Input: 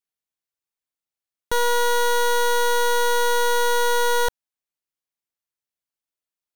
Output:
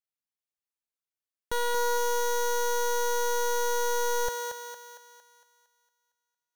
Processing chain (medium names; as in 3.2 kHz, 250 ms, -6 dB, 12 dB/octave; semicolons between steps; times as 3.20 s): thinning echo 229 ms, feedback 51%, high-pass 380 Hz, level -4 dB; trim -8 dB